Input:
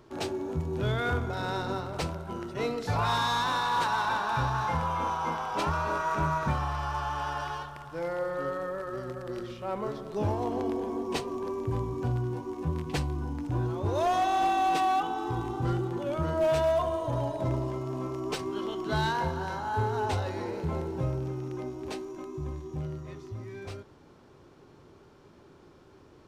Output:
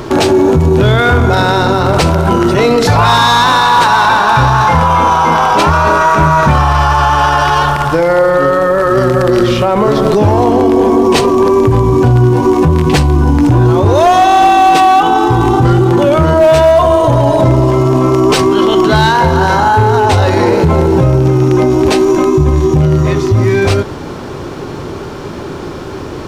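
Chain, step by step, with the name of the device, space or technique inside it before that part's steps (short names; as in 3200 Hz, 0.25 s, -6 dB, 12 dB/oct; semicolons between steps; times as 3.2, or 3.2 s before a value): loud club master (compressor 1.5:1, threshold -33 dBFS, peak gain reduction 4 dB; hard clip -24.5 dBFS, distortion -29 dB; maximiser +33 dB); gain -1 dB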